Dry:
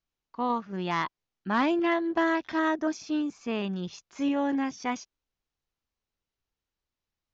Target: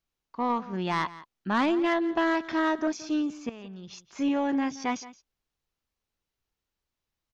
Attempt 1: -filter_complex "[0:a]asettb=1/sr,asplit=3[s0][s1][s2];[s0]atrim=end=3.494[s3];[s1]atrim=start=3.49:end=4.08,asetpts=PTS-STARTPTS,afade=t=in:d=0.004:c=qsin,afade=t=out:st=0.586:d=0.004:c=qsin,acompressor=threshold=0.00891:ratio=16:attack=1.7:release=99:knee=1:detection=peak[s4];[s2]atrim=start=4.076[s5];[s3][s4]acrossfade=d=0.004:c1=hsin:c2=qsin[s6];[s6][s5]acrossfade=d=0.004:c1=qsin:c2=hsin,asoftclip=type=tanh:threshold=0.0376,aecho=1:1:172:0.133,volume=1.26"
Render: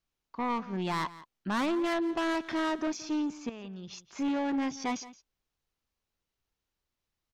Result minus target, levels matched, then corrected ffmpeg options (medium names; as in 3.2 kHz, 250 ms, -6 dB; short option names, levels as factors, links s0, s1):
saturation: distortion +11 dB
-filter_complex "[0:a]asettb=1/sr,asplit=3[s0][s1][s2];[s0]atrim=end=3.494[s3];[s1]atrim=start=3.49:end=4.08,asetpts=PTS-STARTPTS,afade=t=in:d=0.004:c=qsin,afade=t=out:st=0.586:d=0.004:c=qsin,acompressor=threshold=0.00891:ratio=16:attack=1.7:release=99:knee=1:detection=peak[s4];[s2]atrim=start=4.076[s5];[s3][s4]acrossfade=d=0.004:c1=hsin:c2=qsin[s6];[s6][s5]acrossfade=d=0.004:c1=qsin:c2=hsin,asoftclip=type=tanh:threshold=0.106,aecho=1:1:172:0.133,volume=1.26"